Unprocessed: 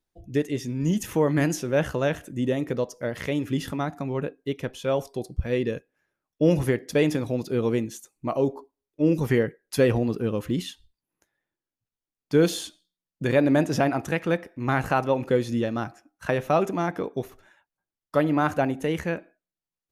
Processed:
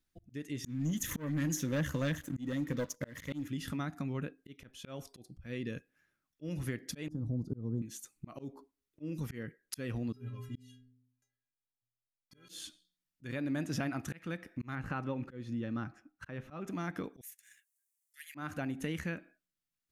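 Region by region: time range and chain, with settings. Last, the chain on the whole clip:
0.64–3.48 ripple EQ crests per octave 1.1, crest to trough 8 dB + LFO notch sine 8.8 Hz 660–4000 Hz + sample leveller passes 2
7.08–7.82 Butterworth band-stop 2400 Hz, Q 0.51 + RIAA curve playback
10.12–12.49 bell 65 Hz +4 dB 1.8 oct + metallic resonator 120 Hz, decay 0.82 s, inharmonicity 0.03
14.75–16.68 LPF 1600 Hz 6 dB/oct + notch 680 Hz, Q 9
17.21–18.35 steep high-pass 1700 Hz 72 dB/oct + resonant high shelf 5800 Hz +12.5 dB, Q 1.5 + sample leveller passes 1
whole clip: band shelf 610 Hz -8.5 dB; auto swell 0.482 s; compressor 2.5:1, threshold -38 dBFS; gain +1 dB

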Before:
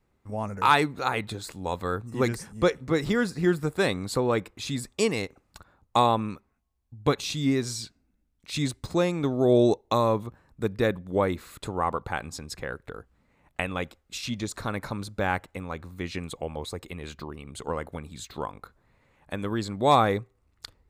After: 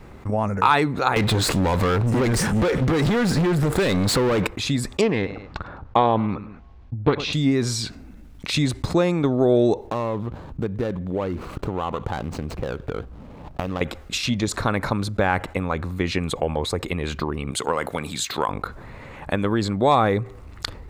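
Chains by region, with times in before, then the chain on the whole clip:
1.16–4.47 compressor, threshold -31 dBFS + sample leveller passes 5
5.01–7.33 air absorption 210 m + feedback echo 0.104 s, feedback 29%, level -23 dB + Doppler distortion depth 0.32 ms
9.87–13.81 median filter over 25 samples + compressor 2:1, threshold -41 dBFS
17.51–18.49 HPF 89 Hz + tilt +2.5 dB/oct
whole clip: high shelf 5100 Hz -9.5 dB; transient shaper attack +6 dB, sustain +2 dB; fast leveller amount 50%; gain -1 dB

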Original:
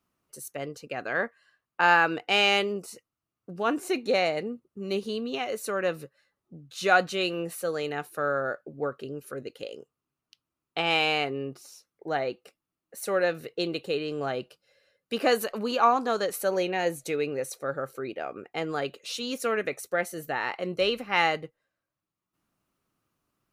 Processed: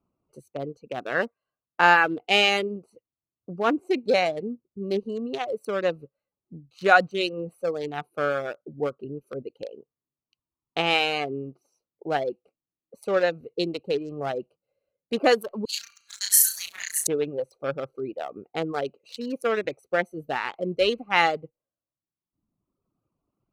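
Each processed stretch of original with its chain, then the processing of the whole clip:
15.65–17.07 steep high-pass 1700 Hz 72 dB/oct + resonant high shelf 4300 Hz +12.5 dB, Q 1.5 + flutter echo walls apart 5.8 m, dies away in 0.96 s
whole clip: Wiener smoothing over 25 samples; reverb removal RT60 1.3 s; gain +4.5 dB

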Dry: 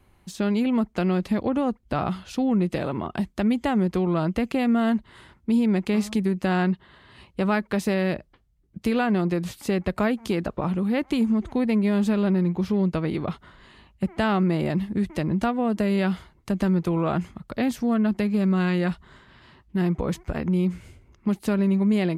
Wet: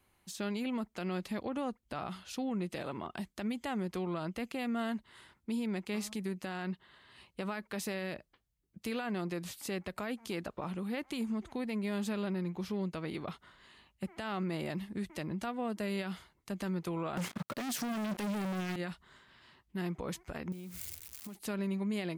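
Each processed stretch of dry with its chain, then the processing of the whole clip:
17.17–18.76 HPF 130 Hz 24 dB/oct + sample leveller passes 5
20.52–21.35 switching spikes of -29 dBFS + bell 73 Hz +8.5 dB 1 oct + compressor 12:1, threshold -28 dBFS
whole clip: tilt +2 dB/oct; limiter -19 dBFS; gain -9 dB

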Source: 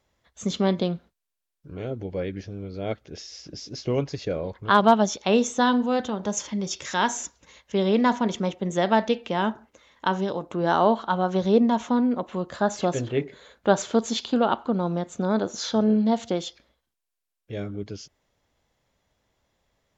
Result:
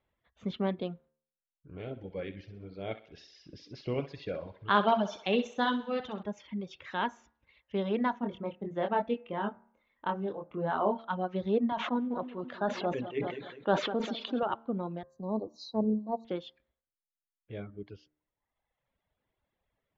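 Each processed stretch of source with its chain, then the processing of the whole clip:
1.79–6.23 high shelf 3500 Hz +11 dB + thinning echo 64 ms, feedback 61%, high-pass 330 Hz, level -5.5 dB
8.2–10.99 high shelf 3000 Hz -12 dB + doubler 25 ms -4 dB + de-hum 96.47 Hz, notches 27
11.72–14.43 HPF 190 Hz + feedback echo 0.2 s, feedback 40%, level -9 dB + sustainer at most 33 dB/s
15.03–16.25 G.711 law mismatch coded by mu + brick-wall FIR band-stop 1200–3800 Hz + three-band expander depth 100%
whole clip: LPF 3300 Hz 24 dB/oct; de-hum 75.65 Hz, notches 26; reverb removal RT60 1.2 s; gain -7.5 dB

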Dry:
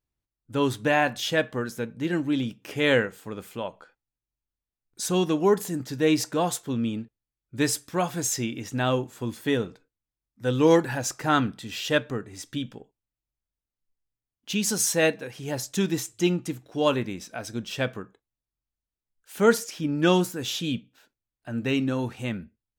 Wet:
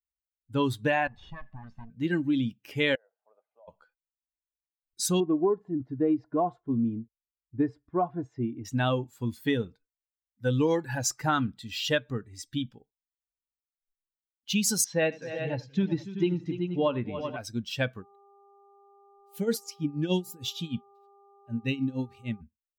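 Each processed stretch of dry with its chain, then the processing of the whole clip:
1.07–1.9 minimum comb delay 1.1 ms + compressor 3:1, threshold -35 dBFS + tape spacing loss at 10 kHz 27 dB
2.95–3.68 ladder band-pass 700 Hz, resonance 70% + compressor 5:1, threshold -44 dBFS
5.2–8.65 LPF 1100 Hz + comb 2.9 ms, depth 35%
14.84–17.37 air absorption 230 m + tapped delay 81/283/379/474 ms -16/-12/-9.5/-15 dB
18–22.4 bell 1200 Hz -12 dB 0.83 oct + tremolo 6.5 Hz, depth 79% + buzz 400 Hz, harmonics 3, -48 dBFS -6 dB/oct
whole clip: per-bin expansion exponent 1.5; compressor 10:1, threshold -26 dBFS; gain +4.5 dB

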